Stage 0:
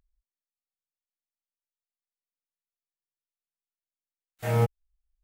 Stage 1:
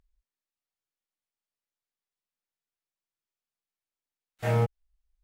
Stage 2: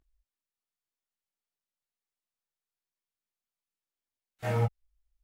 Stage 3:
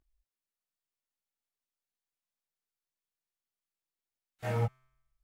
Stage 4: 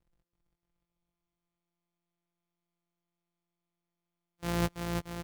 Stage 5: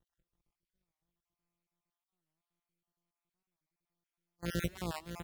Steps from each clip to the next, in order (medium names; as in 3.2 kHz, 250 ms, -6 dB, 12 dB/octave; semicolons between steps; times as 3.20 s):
treble shelf 8.5 kHz -11 dB; compression, threshold -23 dBFS, peak gain reduction 5.5 dB; trim +2.5 dB
chorus voices 4, 0.93 Hz, delay 19 ms, depth 3 ms
feedback comb 130 Hz, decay 0.91 s, harmonics all, mix 30%
sorted samples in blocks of 256 samples; bouncing-ball echo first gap 330 ms, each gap 0.9×, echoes 5
random holes in the spectrogram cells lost 39%; on a send at -19 dB: reverberation RT60 0.45 s, pre-delay 85 ms; on the sum: warped record 45 rpm, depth 160 cents; trim -1.5 dB